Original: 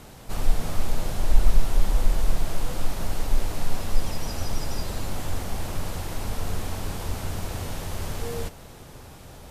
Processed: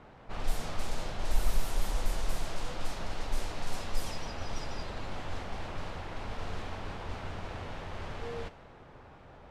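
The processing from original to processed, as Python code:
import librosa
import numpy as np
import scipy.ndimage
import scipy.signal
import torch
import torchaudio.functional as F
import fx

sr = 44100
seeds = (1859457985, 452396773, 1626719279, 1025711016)

y = fx.low_shelf(x, sr, hz=400.0, db=-8.0)
y = fx.env_lowpass(y, sr, base_hz=1700.0, full_db=-18.0)
y = y * 10.0 ** (-2.5 / 20.0)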